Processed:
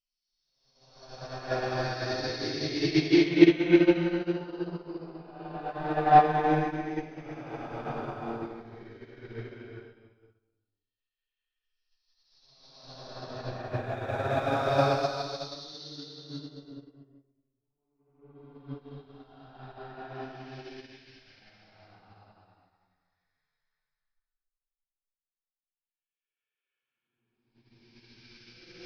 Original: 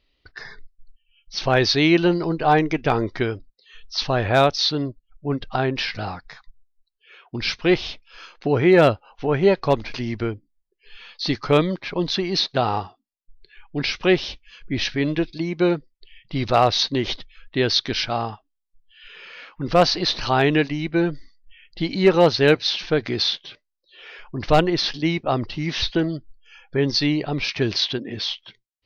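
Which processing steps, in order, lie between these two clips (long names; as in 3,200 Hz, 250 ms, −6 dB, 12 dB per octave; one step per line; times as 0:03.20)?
dynamic equaliser 3,000 Hz, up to −5 dB, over −35 dBFS, Q 1.3
extreme stretch with random phases 4.5×, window 0.50 s, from 0:01.14
expander for the loud parts 2.5 to 1, over −37 dBFS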